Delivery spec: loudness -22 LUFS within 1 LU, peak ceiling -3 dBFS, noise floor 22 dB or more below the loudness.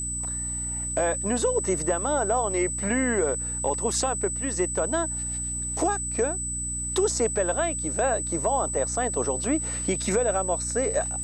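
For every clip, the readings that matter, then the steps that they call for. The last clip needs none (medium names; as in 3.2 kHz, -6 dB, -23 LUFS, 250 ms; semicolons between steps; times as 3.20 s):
hum 60 Hz; highest harmonic 300 Hz; hum level -34 dBFS; steady tone 8 kHz; tone level -29 dBFS; loudness -25.5 LUFS; peak level -12.0 dBFS; loudness target -22.0 LUFS
-> hum notches 60/120/180/240/300 Hz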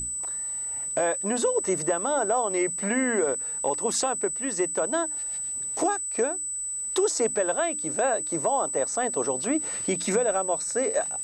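hum not found; steady tone 8 kHz; tone level -29 dBFS
-> band-stop 8 kHz, Q 30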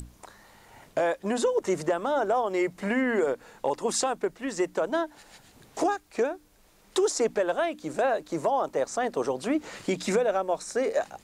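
steady tone not found; loudness -28.0 LUFS; peak level -13.5 dBFS; loudness target -22.0 LUFS
-> trim +6 dB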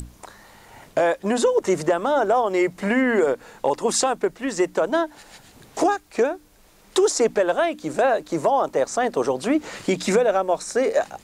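loudness -22.0 LUFS; peak level -7.5 dBFS; noise floor -53 dBFS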